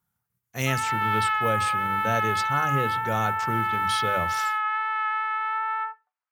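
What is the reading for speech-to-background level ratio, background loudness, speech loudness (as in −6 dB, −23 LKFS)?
−4.5 dB, −25.5 LKFS, −30.0 LKFS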